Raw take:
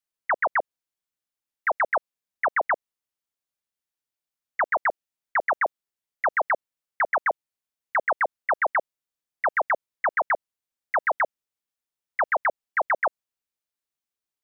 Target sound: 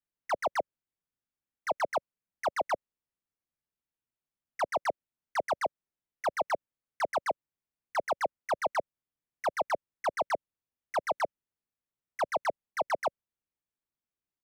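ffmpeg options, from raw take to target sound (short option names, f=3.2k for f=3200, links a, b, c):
-filter_complex "[0:a]firequalizer=gain_entry='entry(160,0);entry(560,-7);entry(1500,-9);entry(2200,-10);entry(4100,-17)':delay=0.05:min_phase=1,acrossover=split=110|860[a][b][c];[c]asoftclip=type=hard:threshold=-38dB[d];[a][b][d]amix=inputs=3:normalize=0,volume=4dB"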